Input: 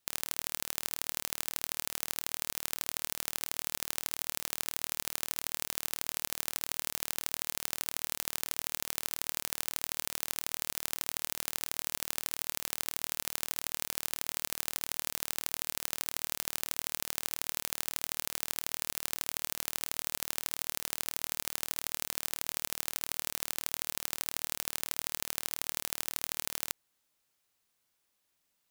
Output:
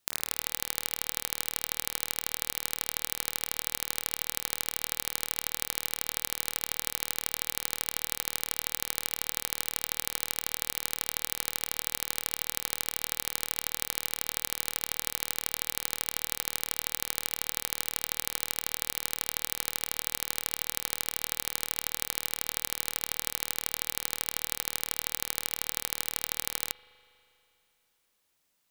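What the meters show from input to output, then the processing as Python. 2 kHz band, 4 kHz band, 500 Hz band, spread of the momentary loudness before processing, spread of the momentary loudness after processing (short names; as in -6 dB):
+3.0 dB, +3.0 dB, +3.0 dB, 1 LU, 1 LU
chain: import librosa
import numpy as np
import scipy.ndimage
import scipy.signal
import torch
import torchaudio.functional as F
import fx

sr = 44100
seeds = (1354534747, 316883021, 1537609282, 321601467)

y = fx.rev_spring(x, sr, rt60_s=2.9, pass_ms=(40,), chirp_ms=20, drr_db=15.5)
y = F.gain(torch.from_numpy(y), 3.0).numpy()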